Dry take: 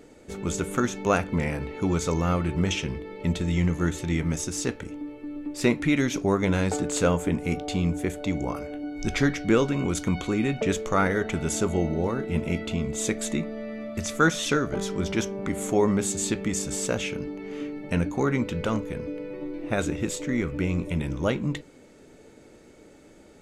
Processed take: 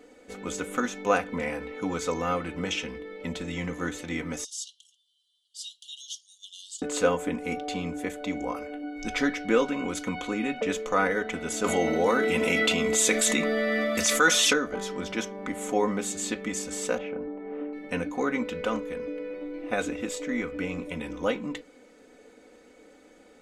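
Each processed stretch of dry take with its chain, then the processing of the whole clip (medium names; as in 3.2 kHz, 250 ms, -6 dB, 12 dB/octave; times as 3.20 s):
4.44–6.82 s: brick-wall FIR high-pass 2.8 kHz + careless resampling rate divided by 2×, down none, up filtered
11.64–14.53 s: tilt EQ +2 dB/octave + level flattener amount 70%
16.98–17.73 s: low-pass 1.3 kHz + peaking EQ 710 Hz +8 dB 0.76 oct
whole clip: tone controls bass -12 dB, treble -4 dB; comb 4 ms, depth 69%; trim -1.5 dB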